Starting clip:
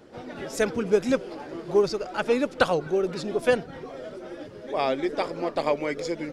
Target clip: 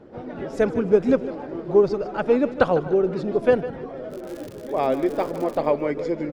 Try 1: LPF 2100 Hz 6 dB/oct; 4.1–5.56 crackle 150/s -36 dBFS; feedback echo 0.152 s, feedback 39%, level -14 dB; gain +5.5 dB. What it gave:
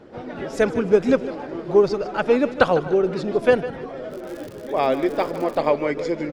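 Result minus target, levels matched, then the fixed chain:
2000 Hz band +4.0 dB
LPF 790 Hz 6 dB/oct; 4.1–5.56 crackle 150/s -36 dBFS; feedback echo 0.152 s, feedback 39%, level -14 dB; gain +5.5 dB

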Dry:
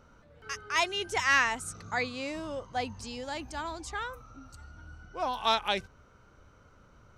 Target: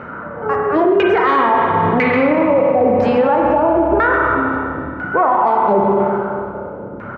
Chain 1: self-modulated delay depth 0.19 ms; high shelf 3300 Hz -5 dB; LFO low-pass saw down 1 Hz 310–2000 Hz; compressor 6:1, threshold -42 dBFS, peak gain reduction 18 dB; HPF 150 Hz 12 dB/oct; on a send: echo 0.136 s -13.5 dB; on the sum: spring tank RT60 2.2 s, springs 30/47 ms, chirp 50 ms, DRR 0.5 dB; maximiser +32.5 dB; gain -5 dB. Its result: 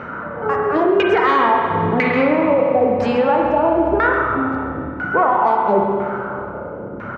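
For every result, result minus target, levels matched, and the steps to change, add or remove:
compressor: peak gain reduction +7.5 dB; 8000 Hz band +6.0 dB
change: compressor 6:1, threshold -33.5 dBFS, peak gain reduction 10.5 dB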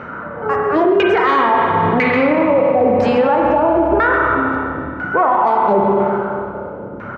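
8000 Hz band +5.0 dB
change: high shelf 3300 Hz -12.5 dB

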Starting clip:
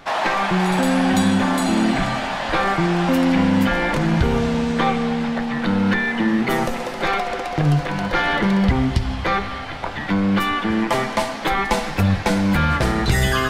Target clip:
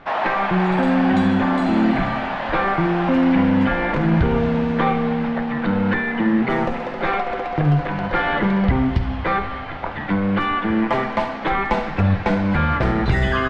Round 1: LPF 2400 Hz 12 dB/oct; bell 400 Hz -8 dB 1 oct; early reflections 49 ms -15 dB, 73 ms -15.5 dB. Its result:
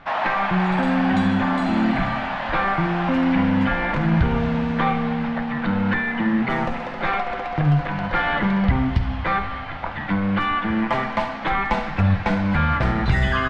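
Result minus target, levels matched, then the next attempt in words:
500 Hz band -3.0 dB
LPF 2400 Hz 12 dB/oct; early reflections 49 ms -15 dB, 73 ms -15.5 dB

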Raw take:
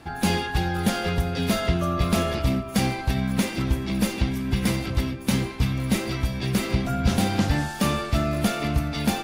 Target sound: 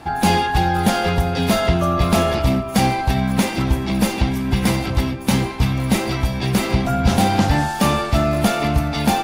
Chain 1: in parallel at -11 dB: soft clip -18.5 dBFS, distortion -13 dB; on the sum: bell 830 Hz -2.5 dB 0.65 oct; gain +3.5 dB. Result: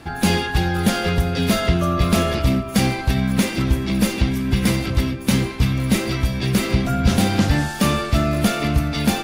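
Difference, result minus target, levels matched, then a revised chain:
1000 Hz band -5.5 dB
in parallel at -11 dB: soft clip -18.5 dBFS, distortion -13 dB; on the sum: bell 830 Hz +7 dB 0.65 oct; gain +3.5 dB

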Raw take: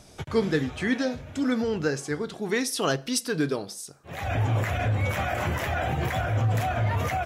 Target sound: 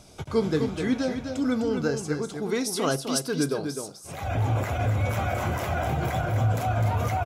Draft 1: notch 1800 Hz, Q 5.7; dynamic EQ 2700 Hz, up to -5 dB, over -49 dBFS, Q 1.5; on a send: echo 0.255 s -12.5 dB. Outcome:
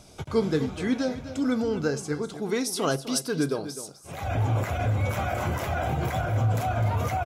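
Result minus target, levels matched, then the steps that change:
echo-to-direct -6 dB
change: echo 0.255 s -6.5 dB

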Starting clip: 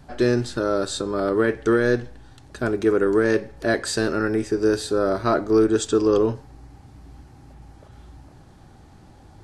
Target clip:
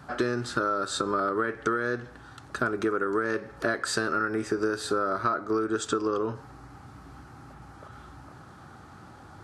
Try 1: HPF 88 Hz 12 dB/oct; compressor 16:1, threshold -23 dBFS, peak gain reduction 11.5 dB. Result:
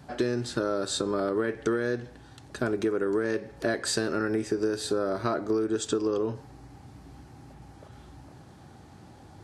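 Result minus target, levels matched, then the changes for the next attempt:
1000 Hz band -7.0 dB
add after HPF: bell 1300 Hz +14 dB 0.64 oct

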